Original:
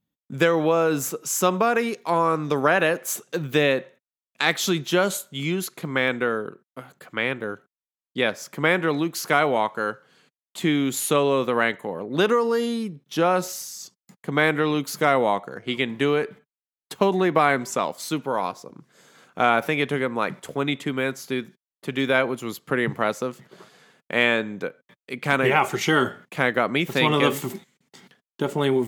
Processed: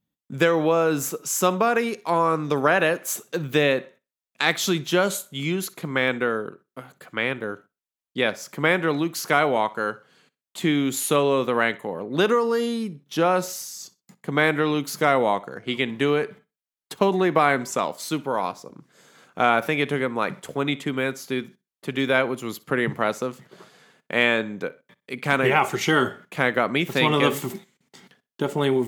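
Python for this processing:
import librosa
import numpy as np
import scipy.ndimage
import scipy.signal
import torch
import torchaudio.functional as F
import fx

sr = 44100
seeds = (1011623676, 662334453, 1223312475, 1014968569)

y = fx.echo_feedback(x, sr, ms=62, feedback_pct=23, wet_db=-21)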